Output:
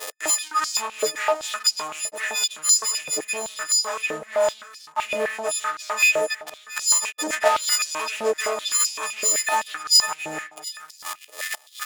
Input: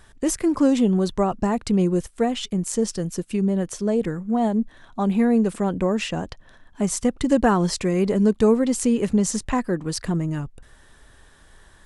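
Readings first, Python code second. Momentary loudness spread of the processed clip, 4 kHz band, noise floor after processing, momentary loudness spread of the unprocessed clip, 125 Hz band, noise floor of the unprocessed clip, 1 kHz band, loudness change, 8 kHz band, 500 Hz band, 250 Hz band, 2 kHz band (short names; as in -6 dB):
14 LU, +12.5 dB, -50 dBFS, 8 LU, under -25 dB, -52 dBFS, +2.5 dB, +0.5 dB, +11.0 dB, -3.5 dB, -23.5 dB, +10.5 dB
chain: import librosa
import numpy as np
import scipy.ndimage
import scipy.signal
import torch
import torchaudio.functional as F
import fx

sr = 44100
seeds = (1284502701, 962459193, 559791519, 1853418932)

p1 = fx.freq_snap(x, sr, grid_st=6)
p2 = p1 + 0.4 * np.pad(p1, (int(6.4 * sr / 1000.0), 0))[:len(p1)]
p3 = fx.leveller(p2, sr, passes=5)
p4 = fx.gate_flip(p3, sr, shuts_db=-18.0, range_db=-24)
p5 = fx.level_steps(p4, sr, step_db=14)
p6 = p4 + F.gain(torch.from_numpy(p5), -3.0).numpy()
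p7 = fx.vibrato(p6, sr, rate_hz=1.5, depth_cents=9.8)
p8 = 10.0 ** (-18.0 / 20.0) * (np.abs((p7 / 10.0 ** (-18.0 / 20.0) + 3.0) % 4.0 - 2.0) - 1.0)
p9 = p8 + 10.0 ** (-13.5 / 20.0) * np.pad(p8, (int(717 * sr / 1000.0), 0))[:len(p8)]
p10 = fx.filter_held_highpass(p9, sr, hz=7.8, low_hz=520.0, high_hz=4900.0)
y = F.gain(torch.from_numpy(p10), 4.5).numpy()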